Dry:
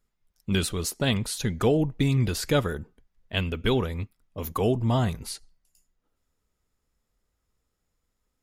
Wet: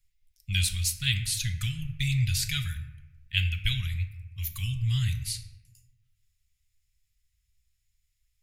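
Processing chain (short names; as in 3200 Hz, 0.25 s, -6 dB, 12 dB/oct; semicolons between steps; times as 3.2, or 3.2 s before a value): elliptic band-stop 110–2200 Hz, stop band 80 dB; on a send: reverb RT60 1.1 s, pre-delay 5 ms, DRR 7 dB; on the sum: gain +3 dB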